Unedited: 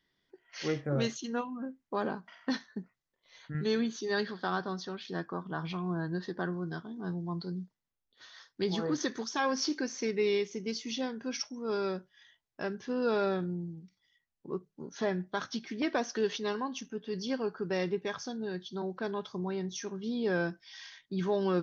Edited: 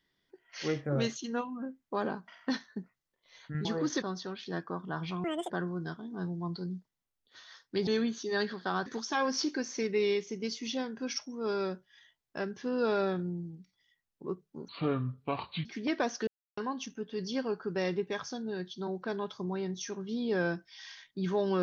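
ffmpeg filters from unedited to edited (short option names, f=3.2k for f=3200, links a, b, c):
-filter_complex "[0:a]asplit=11[a][b][c][d][e][f][g][h][i][j][k];[a]atrim=end=3.652[l];[b]atrim=start=8.728:end=9.102[m];[c]atrim=start=4.638:end=5.864[n];[d]atrim=start=5.86:end=6.36,asetpts=PTS-STARTPTS,asetrate=84231,aresample=44100[o];[e]atrim=start=6.356:end=8.732[p];[f]atrim=start=3.648:end=4.642[q];[g]atrim=start=9.098:end=14.924[r];[h]atrim=start=14.92:end=15.6,asetpts=PTS-STARTPTS,asetrate=30870,aresample=44100[s];[i]atrim=start=15.596:end=16.22,asetpts=PTS-STARTPTS,afade=t=out:st=0.62:d=0.004:c=hsin[t];[j]atrim=start=16.22:end=16.52,asetpts=PTS-STARTPTS,volume=0[u];[k]atrim=start=16.52,asetpts=PTS-STARTPTS,afade=t=in:d=0.004:c=hsin[v];[l][m]acrossfade=d=0.004:c1=hsin:c2=hsin[w];[w][n]acrossfade=d=0.004:c1=hsin:c2=hsin[x];[x][o]acrossfade=d=0.004:c1=hsin:c2=hsin[y];[y][p]acrossfade=d=0.004:c1=hsin:c2=hsin[z];[z][q]acrossfade=d=0.004:c1=hsin:c2=hsin[aa];[aa][r]acrossfade=d=0.004:c1=hsin:c2=hsin[ab];[ab][s]acrossfade=d=0.004:c1=hsin:c2=hsin[ac];[t][u][v]concat=n=3:v=0:a=1[ad];[ac][ad]acrossfade=d=0.004:c1=hsin:c2=hsin"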